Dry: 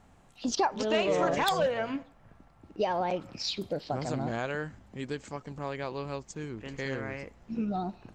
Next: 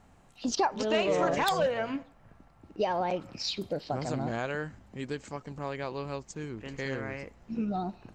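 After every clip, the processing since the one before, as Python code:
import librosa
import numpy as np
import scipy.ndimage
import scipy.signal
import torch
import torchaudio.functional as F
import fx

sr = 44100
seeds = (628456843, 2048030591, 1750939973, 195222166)

y = fx.notch(x, sr, hz=3400.0, q=29.0)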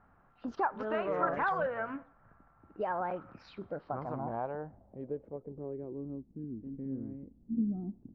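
y = fx.filter_sweep_lowpass(x, sr, from_hz=1400.0, to_hz=260.0, start_s=3.69, end_s=6.31, q=3.5)
y = F.gain(torch.from_numpy(y), -7.5).numpy()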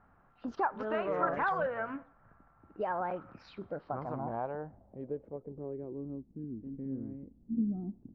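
y = x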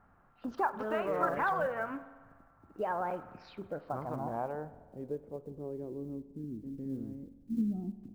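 y = fx.block_float(x, sr, bits=7)
y = fx.rev_spring(y, sr, rt60_s=1.5, pass_ms=(47,), chirp_ms=55, drr_db=14.5)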